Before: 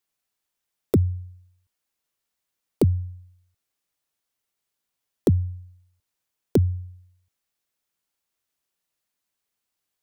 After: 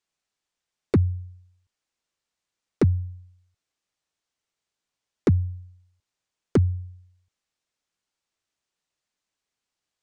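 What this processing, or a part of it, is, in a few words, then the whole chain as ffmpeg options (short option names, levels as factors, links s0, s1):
synthesiser wavefolder: -af "aeval=exprs='0.251*(abs(mod(val(0)/0.251+3,4)-2)-1)':c=same,lowpass=f=8000:w=0.5412,lowpass=f=8000:w=1.3066"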